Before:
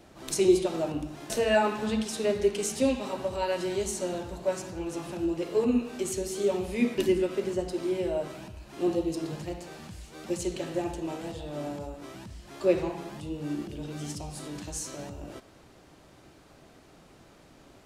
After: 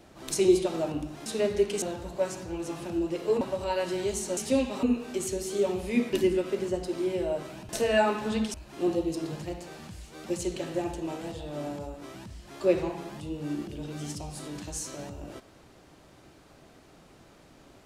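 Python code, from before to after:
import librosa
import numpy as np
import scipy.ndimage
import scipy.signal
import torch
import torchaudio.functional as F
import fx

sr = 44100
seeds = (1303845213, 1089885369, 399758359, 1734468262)

y = fx.edit(x, sr, fx.move(start_s=1.26, length_s=0.85, to_s=8.54),
    fx.swap(start_s=2.67, length_s=0.46, other_s=4.09, other_length_s=1.59), tone=tone)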